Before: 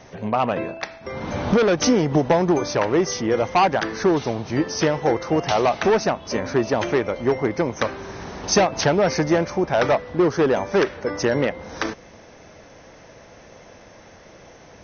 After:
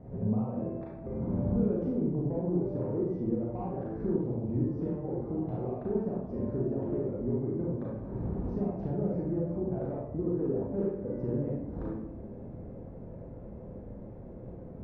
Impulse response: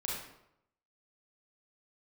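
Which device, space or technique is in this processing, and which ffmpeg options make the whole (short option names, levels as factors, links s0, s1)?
television next door: -filter_complex "[0:a]acompressor=threshold=0.0224:ratio=4,lowpass=310[s0];[1:a]atrim=start_sample=2205[s1];[s0][s1]afir=irnorm=-1:irlink=0,volume=1.68"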